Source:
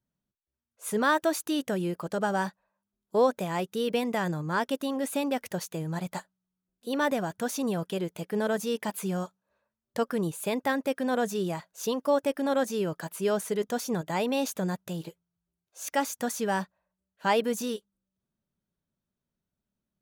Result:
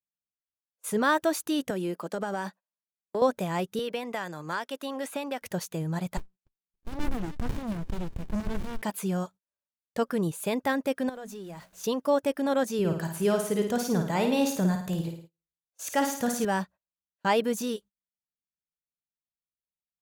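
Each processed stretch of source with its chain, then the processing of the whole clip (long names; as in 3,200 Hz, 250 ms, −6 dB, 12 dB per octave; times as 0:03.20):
0:01.70–0:03.22: high-pass filter 200 Hz 24 dB per octave + downward compressor, threshold −26 dBFS
0:03.79–0:05.42: high-pass filter 880 Hz 6 dB per octave + high-shelf EQ 3,500 Hz −6 dB + multiband upward and downward compressor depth 100%
0:06.17–0:08.82: high-shelf EQ 6,500 Hz +7 dB + echo through a band-pass that steps 285 ms, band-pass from 2,300 Hz, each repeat 0.7 octaves, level −9 dB + windowed peak hold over 65 samples
0:11.09–0:11.84: converter with a step at zero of −41.5 dBFS + mains-hum notches 60/120/180/240/300 Hz + downward compressor 2.5 to 1, threshold −45 dBFS
0:12.79–0:16.45: low-shelf EQ 130 Hz +8 dB + flutter between parallel walls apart 9.3 metres, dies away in 0.54 s
whole clip: low-shelf EQ 110 Hz +7.5 dB; noise gate −46 dBFS, range −27 dB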